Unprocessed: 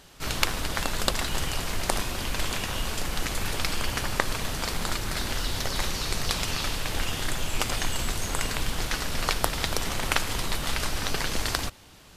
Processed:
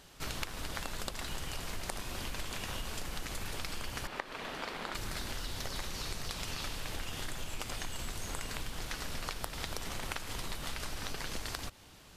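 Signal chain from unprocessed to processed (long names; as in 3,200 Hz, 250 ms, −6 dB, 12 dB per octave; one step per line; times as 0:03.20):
0:04.07–0:04.95: three-way crossover with the lows and the highs turned down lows −18 dB, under 220 Hz, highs −15 dB, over 3,700 Hz
downward compressor, threshold −30 dBFS, peak gain reduction 13 dB
level −4.5 dB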